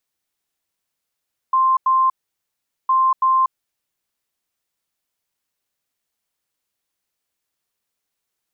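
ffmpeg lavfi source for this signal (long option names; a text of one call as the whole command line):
ffmpeg -f lavfi -i "aevalsrc='0.237*sin(2*PI*1050*t)*clip(min(mod(mod(t,1.36),0.33),0.24-mod(mod(t,1.36),0.33))/0.005,0,1)*lt(mod(t,1.36),0.66)':duration=2.72:sample_rate=44100" out.wav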